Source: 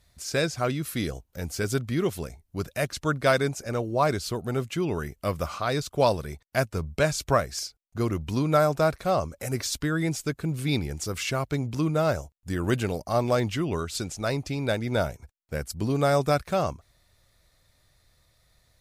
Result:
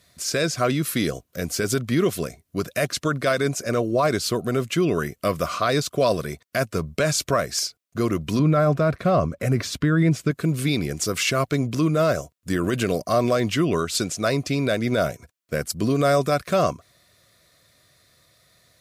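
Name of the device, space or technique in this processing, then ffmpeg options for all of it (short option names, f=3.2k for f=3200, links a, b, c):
PA system with an anti-feedback notch: -filter_complex "[0:a]asettb=1/sr,asplit=3[a][b][c];[a]atrim=end=8.394[d];[b]atrim=start=8.39:end=10.31,asetpts=PTS-STARTPTS,afade=t=in:d=0.004:c=qsin,afade=t=out:st=1.916:d=0.004:c=qsin,bass=f=250:g=8,treble=f=4k:g=-12[e];[c]atrim=start=10.306[f];[d][e]acrossfade=d=0.004:c1=hsin:c2=qsin[g];[g][f]acrossfade=d=0.004:c1=qsin:c2=hsin,highpass=140,asuperstop=centerf=850:order=8:qfactor=4.3,alimiter=limit=-19.5dB:level=0:latency=1:release=57,volume=8dB"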